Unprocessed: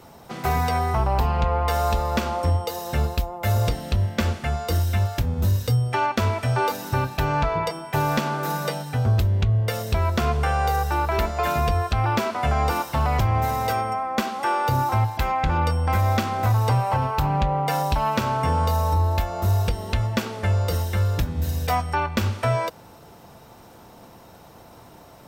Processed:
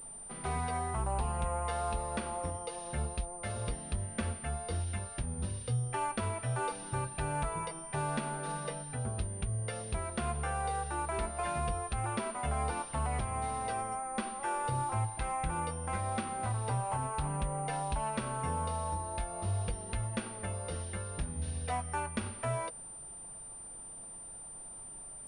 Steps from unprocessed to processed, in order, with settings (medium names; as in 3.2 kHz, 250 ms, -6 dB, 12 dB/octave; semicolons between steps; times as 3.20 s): flange 0.23 Hz, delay 4.4 ms, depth 1.8 ms, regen -61%; added noise brown -52 dBFS; class-D stage that switches slowly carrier 9.1 kHz; trim -8 dB